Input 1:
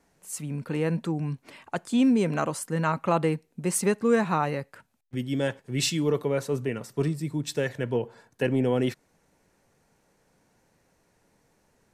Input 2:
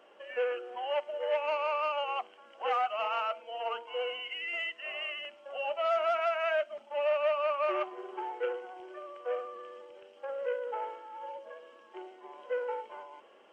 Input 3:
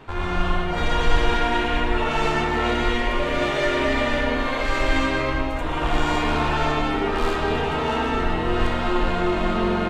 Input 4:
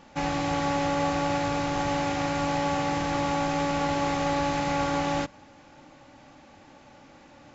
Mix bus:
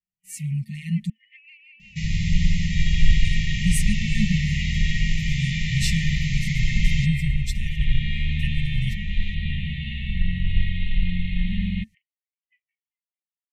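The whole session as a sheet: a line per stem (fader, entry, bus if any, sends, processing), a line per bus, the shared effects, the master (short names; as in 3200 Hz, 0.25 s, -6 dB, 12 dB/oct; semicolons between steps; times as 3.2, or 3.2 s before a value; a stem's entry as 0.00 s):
+1.5 dB, 0.00 s, muted 1.1–3.25, no send, endless flanger 6.6 ms -1.2 Hz
-1.0 dB, 0.00 s, no send, high shelf 4800 Hz +4.5 dB; reverb removal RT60 1.1 s; three-band isolator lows -14 dB, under 400 Hz, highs -24 dB, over 2500 Hz
-3.5 dB, 1.95 s, no send, steep low-pass 4000 Hz 72 dB/oct
+1.0 dB, 1.80 s, no send, dry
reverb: off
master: FFT band-reject 220–1800 Hz; expander -47 dBFS; low shelf 480 Hz +7.5 dB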